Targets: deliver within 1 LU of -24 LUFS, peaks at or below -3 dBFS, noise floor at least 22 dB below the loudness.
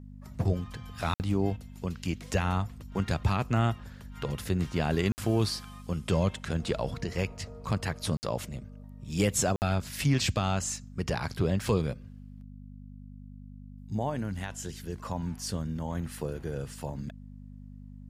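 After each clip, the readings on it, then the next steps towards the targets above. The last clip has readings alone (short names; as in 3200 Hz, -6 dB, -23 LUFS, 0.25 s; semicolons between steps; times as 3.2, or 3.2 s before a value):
dropouts 4; longest dropout 59 ms; hum 50 Hz; harmonics up to 250 Hz; hum level -44 dBFS; loudness -31.5 LUFS; peak -14.5 dBFS; loudness target -24.0 LUFS
-> interpolate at 1.14/5.12/8.17/9.56, 59 ms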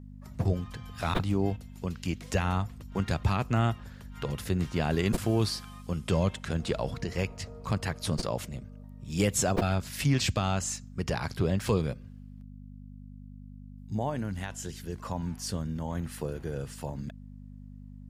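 dropouts 0; hum 50 Hz; harmonics up to 250 Hz; hum level -44 dBFS
-> de-hum 50 Hz, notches 5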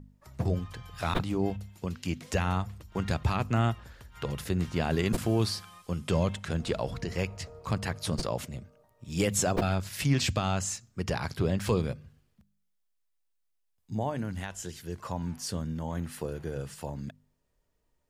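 hum none; loudness -31.5 LUFS; peak -14.0 dBFS; loudness target -24.0 LUFS
-> gain +7.5 dB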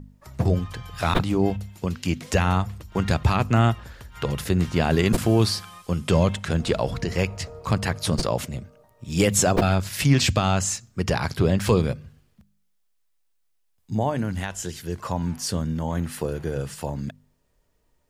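loudness -24.0 LUFS; peak -6.5 dBFS; noise floor -68 dBFS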